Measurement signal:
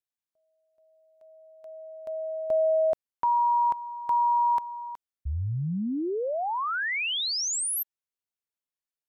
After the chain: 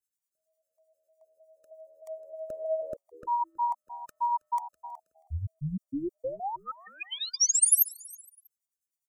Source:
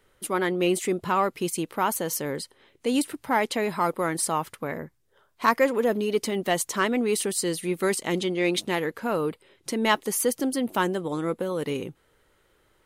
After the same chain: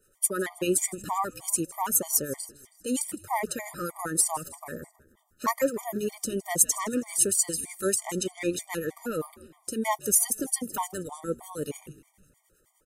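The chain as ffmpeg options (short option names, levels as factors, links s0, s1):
-filter_complex "[0:a]highshelf=f=5100:t=q:w=1.5:g=11.5,acrossover=split=1200[s0][s1];[s0]aeval=exprs='val(0)*(1-0.7/2+0.7/2*cos(2*PI*9.9*n/s))':c=same[s2];[s1]aeval=exprs='val(0)*(1-0.7/2-0.7/2*cos(2*PI*9.9*n/s))':c=same[s3];[s2][s3]amix=inputs=2:normalize=0,asplit=5[s4][s5][s6][s7][s8];[s5]adelay=160,afreqshift=-77,volume=0.1[s9];[s6]adelay=320,afreqshift=-154,volume=0.0537[s10];[s7]adelay=480,afreqshift=-231,volume=0.0292[s11];[s8]adelay=640,afreqshift=-308,volume=0.0157[s12];[s4][s9][s10][s11][s12]amix=inputs=5:normalize=0,afftfilt=real='re*gt(sin(2*PI*3.2*pts/sr)*(1-2*mod(floor(b*sr/1024/610),2)),0)':imag='im*gt(sin(2*PI*3.2*pts/sr)*(1-2*mod(floor(b*sr/1024/610),2)),0)':win_size=1024:overlap=0.75"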